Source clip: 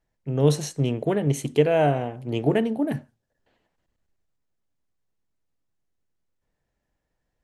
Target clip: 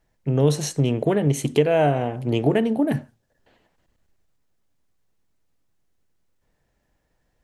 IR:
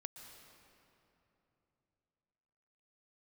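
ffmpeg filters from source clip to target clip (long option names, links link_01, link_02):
-af "acompressor=threshold=-28dB:ratio=2,volume=8dB"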